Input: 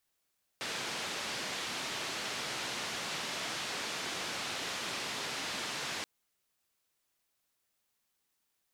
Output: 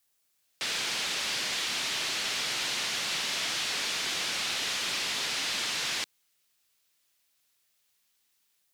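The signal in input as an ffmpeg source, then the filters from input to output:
-f lavfi -i "anoisesrc=c=white:d=5.43:r=44100:seed=1,highpass=f=130,lowpass=f=4600,volume=-26.6dB"
-filter_complex "[0:a]highshelf=f=3700:g=7.5,acrossover=split=190|1700|5100[s0][s1][s2][s3];[s2]dynaudnorm=f=260:g=3:m=2[s4];[s0][s1][s4][s3]amix=inputs=4:normalize=0,aeval=exprs='clip(val(0),-1,0.0501)':c=same"

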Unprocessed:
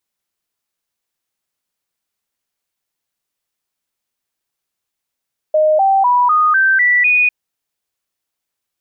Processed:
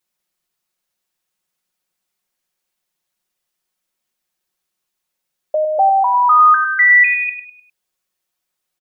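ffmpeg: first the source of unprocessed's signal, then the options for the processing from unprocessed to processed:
-f lavfi -i "aevalsrc='0.355*clip(min(mod(t,0.25),0.25-mod(t,0.25))/0.005,0,1)*sin(2*PI*618*pow(2,floor(t/0.25)/3)*mod(t,0.25))':d=1.75:s=44100"
-filter_complex "[0:a]aecho=1:1:5.5:0.65,asplit=2[s0][s1];[s1]aecho=0:1:101|202|303|404:0.355|0.135|0.0512|0.0195[s2];[s0][s2]amix=inputs=2:normalize=0"

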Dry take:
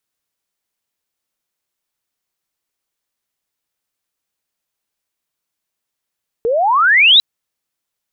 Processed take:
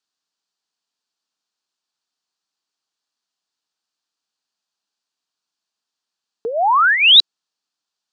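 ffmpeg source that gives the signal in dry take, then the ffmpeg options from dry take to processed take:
-f lavfi -i "aevalsrc='pow(10,(-13+8.5*t/0.75)/20)*sin(2*PI*440*0.75/log(4000/440)*(exp(log(4000/440)*t/0.75)-1))':d=0.75:s=44100"
-af "highpass=250,equalizer=f=360:t=q:w=4:g=-5,equalizer=f=540:t=q:w=4:g=-10,equalizer=f=2100:t=q:w=4:g=-10,equalizer=f=4500:t=q:w=4:g=6,lowpass=f=7200:w=0.5412,lowpass=f=7200:w=1.3066"

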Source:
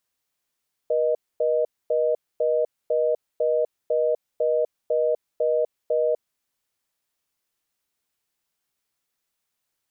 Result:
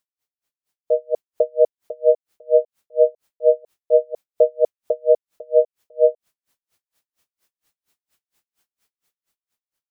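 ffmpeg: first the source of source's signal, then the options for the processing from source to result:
-f lavfi -i "aevalsrc='0.0841*(sin(2*PI*480*t)+sin(2*PI*620*t))*clip(min(mod(t,0.5),0.25-mod(t,0.5))/0.005,0,1)':d=5.41:s=44100"
-af "dynaudnorm=f=110:g=17:m=4.47,aeval=exprs='val(0)*pow(10,-39*(0.5-0.5*cos(2*PI*4.3*n/s))/20)':c=same"

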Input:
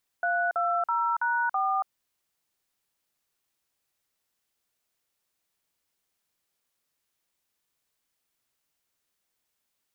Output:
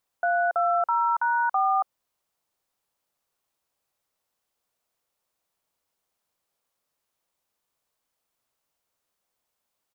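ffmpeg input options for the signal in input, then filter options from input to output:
-f lavfi -i "aevalsrc='0.0501*clip(min(mod(t,0.328),0.281-mod(t,0.328))/0.002,0,1)*(eq(floor(t/0.328),0)*(sin(2*PI*697*mod(t,0.328))+sin(2*PI*1477*mod(t,0.328)))+eq(floor(t/0.328),1)*(sin(2*PI*697*mod(t,0.328))+sin(2*PI*1336*mod(t,0.328)))+eq(floor(t/0.328),2)*(sin(2*PI*941*mod(t,0.328))+sin(2*PI*1336*mod(t,0.328)))+eq(floor(t/0.328),3)*(sin(2*PI*941*mod(t,0.328))+sin(2*PI*1477*mod(t,0.328)))+eq(floor(t/0.328),4)*(sin(2*PI*770*mod(t,0.328))+sin(2*PI*1209*mod(t,0.328))))':d=1.64:s=44100"
-af "firequalizer=gain_entry='entry(350,0);entry(530,5);entry(1100,4);entry(1700,-2)':delay=0.05:min_phase=1"

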